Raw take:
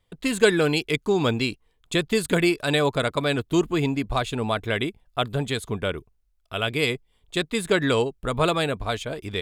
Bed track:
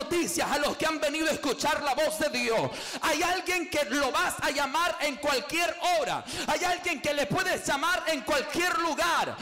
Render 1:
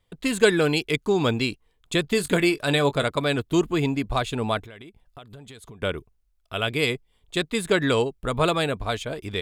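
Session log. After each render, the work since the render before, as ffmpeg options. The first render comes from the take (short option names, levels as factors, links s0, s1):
-filter_complex "[0:a]asettb=1/sr,asplit=3[s0][s1][s2];[s0]atrim=end=2.024[s3];[s1]atrim=start=2.02:end=3.04,asetpts=PTS-STARTPTS,afade=t=in:d=0.004:c=qsin,afade=t=out:st=1.016:d=0.004:c=qsin,asplit=2[s4][s5];[s5]adelay=21,volume=0.237[s6];[s4][s6]amix=inputs=2:normalize=0,atrim=end_sample=44982[s7];[s2]atrim=start=3.036[s8];[s3][s7]acrossfade=d=0.004:c1=hsin:c2=qsin[s9];[s9][s8]acrossfade=d=0.004:c1=qsin:c2=hsin,asettb=1/sr,asplit=3[s10][s11][s12];[s10]atrim=end=4.604[s13];[s11]atrim=start=4.6:end=5.82,asetpts=PTS-STARTPTS,afade=t=in:d=0.004:c=qsin,afade=t=out:st=1.216:d=0.004:c=qsin,acompressor=threshold=0.01:ratio=8:attack=3.2:release=140:knee=1:detection=peak[s14];[s12]atrim=start=5.816[s15];[s13][s14]acrossfade=d=0.004:c1=hsin:c2=qsin[s16];[s16][s15]acrossfade=d=0.004:c1=qsin:c2=hsin"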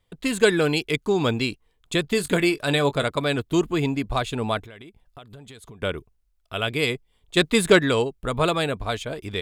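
-filter_complex "[0:a]asplit=3[s0][s1][s2];[s0]afade=t=out:st=7.36:d=0.02[s3];[s1]acontrast=73,afade=t=in:st=7.36:d=0.02,afade=t=out:st=7.78:d=0.02[s4];[s2]afade=t=in:st=7.78:d=0.02[s5];[s3][s4][s5]amix=inputs=3:normalize=0"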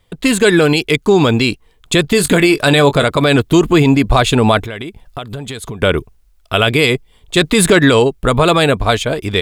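-af "dynaudnorm=f=670:g=5:m=2,alimiter=level_in=4.22:limit=0.891:release=50:level=0:latency=1"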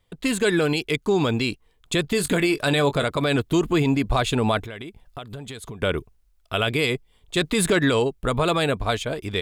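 -af "volume=0.316"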